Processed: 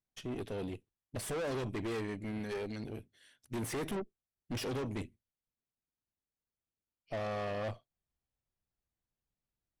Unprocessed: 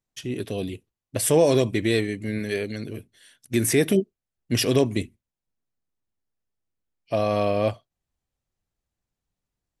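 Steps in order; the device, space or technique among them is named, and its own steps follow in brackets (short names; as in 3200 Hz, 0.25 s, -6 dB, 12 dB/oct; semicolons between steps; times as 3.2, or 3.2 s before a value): tube preamp driven hard (tube stage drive 30 dB, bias 0.65; high shelf 5400 Hz -8.5 dB); gain -4 dB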